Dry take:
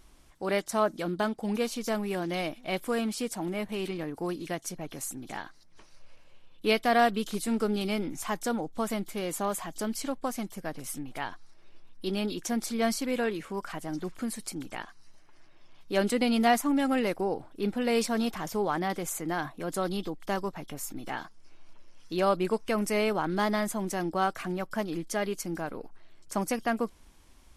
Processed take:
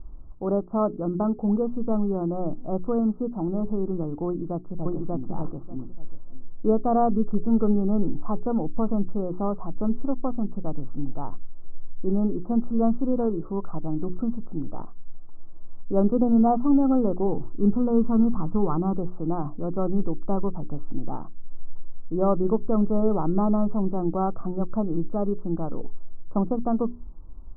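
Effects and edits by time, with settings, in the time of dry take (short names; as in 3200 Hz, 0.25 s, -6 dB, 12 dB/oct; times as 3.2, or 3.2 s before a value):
4.26–5.28 echo throw 0.59 s, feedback 15%, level -0.5 dB
17.27–18.97 comb 0.8 ms, depth 45%
whole clip: Chebyshev low-pass 1300 Hz, order 6; tilt -4 dB/oct; notches 60/120/180/240/300/360/420 Hz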